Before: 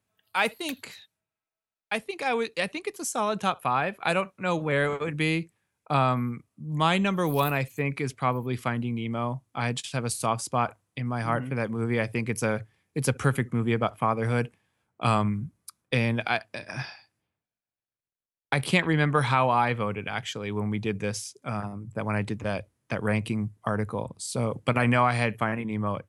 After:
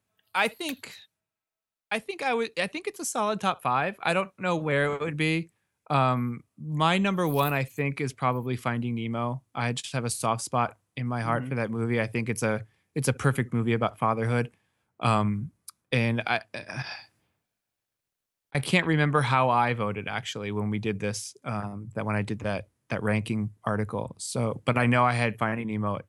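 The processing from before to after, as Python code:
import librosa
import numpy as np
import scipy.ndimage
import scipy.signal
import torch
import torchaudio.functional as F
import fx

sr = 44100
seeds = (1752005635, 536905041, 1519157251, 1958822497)

y = fx.over_compress(x, sr, threshold_db=-44.0, ratio=-1.0, at=(16.82, 18.55))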